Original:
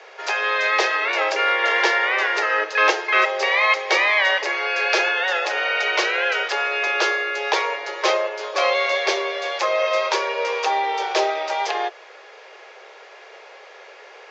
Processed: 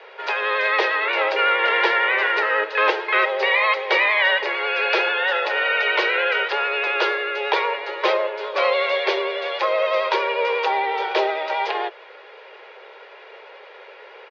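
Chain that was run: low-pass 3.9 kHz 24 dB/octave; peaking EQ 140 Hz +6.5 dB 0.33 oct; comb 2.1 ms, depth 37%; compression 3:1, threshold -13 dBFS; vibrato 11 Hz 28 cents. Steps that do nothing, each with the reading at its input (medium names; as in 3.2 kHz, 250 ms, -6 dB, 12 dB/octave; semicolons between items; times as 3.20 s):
peaking EQ 140 Hz: input has nothing below 300 Hz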